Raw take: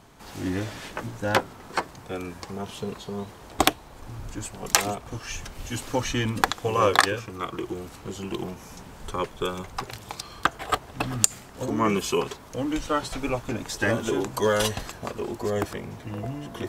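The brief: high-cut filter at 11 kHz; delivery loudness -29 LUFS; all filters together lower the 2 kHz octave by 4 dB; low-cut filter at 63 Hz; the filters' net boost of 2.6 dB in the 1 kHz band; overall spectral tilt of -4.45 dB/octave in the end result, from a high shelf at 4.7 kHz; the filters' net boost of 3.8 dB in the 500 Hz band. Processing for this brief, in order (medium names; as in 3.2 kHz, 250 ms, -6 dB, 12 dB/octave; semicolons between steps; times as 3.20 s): high-pass 63 Hz; low-pass 11 kHz; peaking EQ 500 Hz +4 dB; peaking EQ 1 kHz +4 dB; peaking EQ 2 kHz -6.5 dB; treble shelf 4.7 kHz -4 dB; trim -2.5 dB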